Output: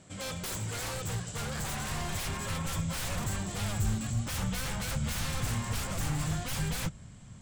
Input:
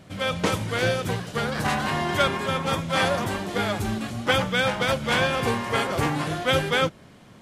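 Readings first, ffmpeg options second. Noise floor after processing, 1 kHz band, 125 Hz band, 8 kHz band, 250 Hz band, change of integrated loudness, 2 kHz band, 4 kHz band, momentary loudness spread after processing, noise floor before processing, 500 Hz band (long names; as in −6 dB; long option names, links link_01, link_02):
−49 dBFS, −14.5 dB, −3.0 dB, +1.5 dB, −9.0 dB, −9.5 dB, −14.0 dB, −11.0 dB, 4 LU, −49 dBFS, −17.5 dB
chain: -af "lowpass=frequency=7700:width_type=q:width=9.6,aeval=exprs='0.0668*(abs(mod(val(0)/0.0668+3,4)-2)-1)':channel_layout=same,asubboost=boost=9.5:cutoff=120,volume=-8dB"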